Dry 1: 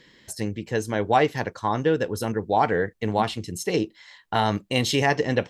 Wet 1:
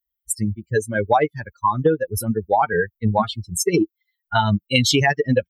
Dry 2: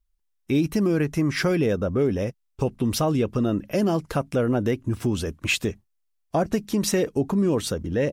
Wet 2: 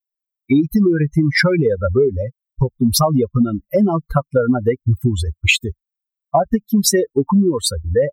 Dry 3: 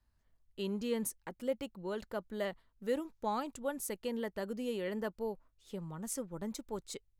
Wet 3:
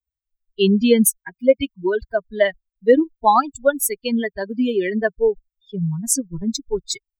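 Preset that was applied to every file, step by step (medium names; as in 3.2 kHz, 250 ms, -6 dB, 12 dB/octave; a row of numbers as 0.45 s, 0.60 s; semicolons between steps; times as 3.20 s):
expander on every frequency bin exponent 3; compression 6:1, threshold -31 dBFS; peak normalisation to -2 dBFS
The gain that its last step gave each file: +17.0 dB, +19.5 dB, +25.5 dB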